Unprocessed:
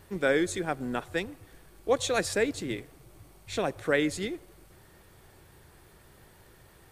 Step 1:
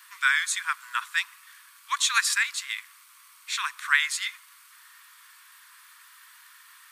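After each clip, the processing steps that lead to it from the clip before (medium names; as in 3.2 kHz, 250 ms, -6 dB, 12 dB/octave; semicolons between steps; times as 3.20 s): steep high-pass 1 kHz 96 dB/octave; trim +9 dB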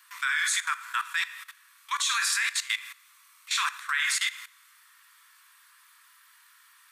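two-slope reverb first 0.56 s, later 1.8 s, DRR 5 dB; level held to a coarse grid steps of 16 dB; trim +5.5 dB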